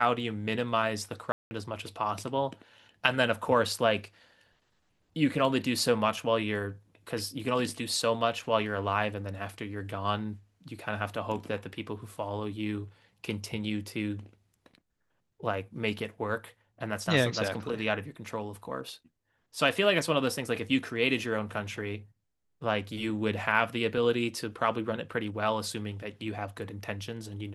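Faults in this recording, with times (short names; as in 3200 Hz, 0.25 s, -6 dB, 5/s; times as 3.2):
1.32–1.51 gap 0.19 s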